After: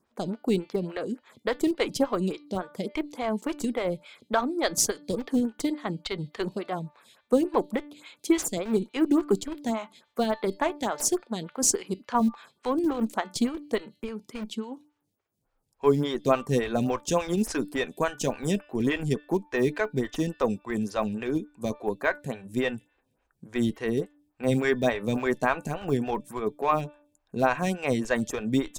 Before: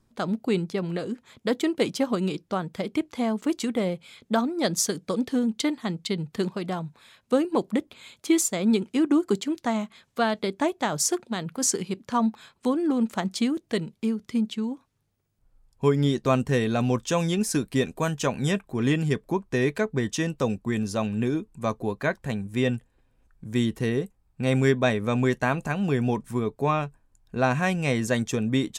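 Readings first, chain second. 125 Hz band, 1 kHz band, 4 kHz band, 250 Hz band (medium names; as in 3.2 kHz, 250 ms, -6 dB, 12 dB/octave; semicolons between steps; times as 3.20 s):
-6.0 dB, 0.0 dB, -3.0 dB, -2.5 dB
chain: high-pass 190 Hz 6 dB/octave; de-hum 294.7 Hz, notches 17; in parallel at -12 dB: Schmitt trigger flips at -22.5 dBFS; on the sum: lamp-driven phase shifter 3.5 Hz; trim +2 dB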